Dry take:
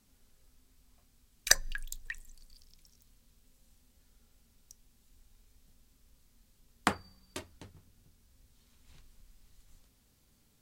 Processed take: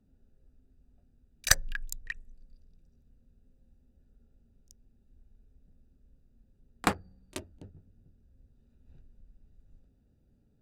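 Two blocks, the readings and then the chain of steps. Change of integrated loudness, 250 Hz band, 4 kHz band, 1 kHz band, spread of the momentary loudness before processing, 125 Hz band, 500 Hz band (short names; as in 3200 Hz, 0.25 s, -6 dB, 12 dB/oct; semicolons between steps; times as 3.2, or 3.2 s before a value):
+1.5 dB, +3.5 dB, +0.5 dB, +2.0 dB, 19 LU, +6.5 dB, +2.5 dB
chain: Wiener smoothing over 41 samples; pre-echo 30 ms -20 dB; one-sided clip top -22.5 dBFS; gain +4 dB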